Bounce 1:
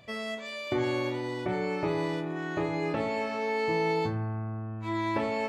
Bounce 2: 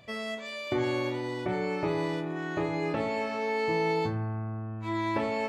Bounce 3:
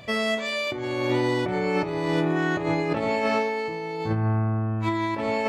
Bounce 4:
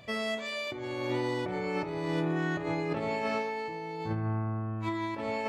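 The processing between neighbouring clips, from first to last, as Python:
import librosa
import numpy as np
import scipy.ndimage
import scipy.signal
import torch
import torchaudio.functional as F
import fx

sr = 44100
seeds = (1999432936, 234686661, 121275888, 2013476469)

y1 = x
y2 = fx.over_compress(y1, sr, threshold_db=-32.0, ratio=-0.5)
y2 = F.gain(torch.from_numpy(y2), 8.0).numpy()
y3 = fx.echo_filtered(y2, sr, ms=67, feedback_pct=73, hz=2000.0, wet_db=-15)
y3 = F.gain(torch.from_numpy(y3), -7.5).numpy()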